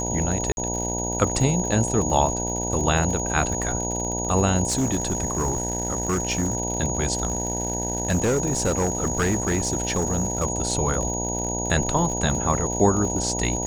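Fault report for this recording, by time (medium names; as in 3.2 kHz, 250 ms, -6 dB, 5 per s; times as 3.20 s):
buzz 60 Hz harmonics 16 -29 dBFS
crackle 77 per s -29 dBFS
whine 6.7 kHz -28 dBFS
0.52–0.57 s: dropout 51 ms
4.68–6.57 s: clipped -18.5 dBFS
7.13–10.45 s: clipped -17.5 dBFS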